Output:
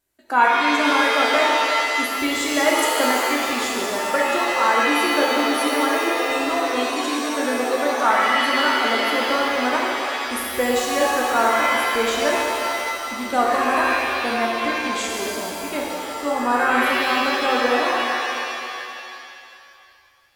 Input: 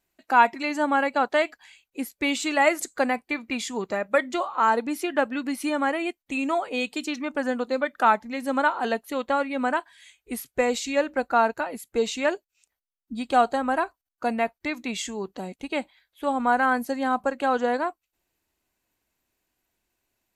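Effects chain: graphic EQ with 31 bands 200 Hz -7 dB, 800 Hz -5 dB, 2.5 kHz -6 dB, 10 kHz +7 dB; pitch-shifted reverb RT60 2.4 s, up +7 st, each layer -2 dB, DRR -2.5 dB

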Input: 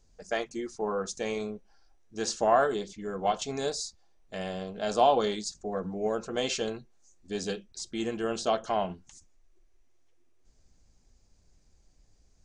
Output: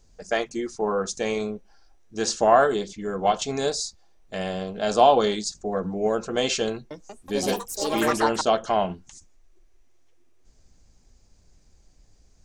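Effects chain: 6.72–8.73 s: ever faster or slower copies 187 ms, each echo +5 st, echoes 3; trim +6 dB

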